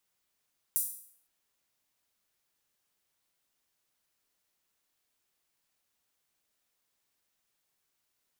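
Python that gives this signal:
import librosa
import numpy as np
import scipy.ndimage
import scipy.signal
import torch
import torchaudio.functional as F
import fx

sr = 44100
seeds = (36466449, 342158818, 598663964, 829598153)

y = fx.drum_hat_open(sr, length_s=0.51, from_hz=9800.0, decay_s=0.58)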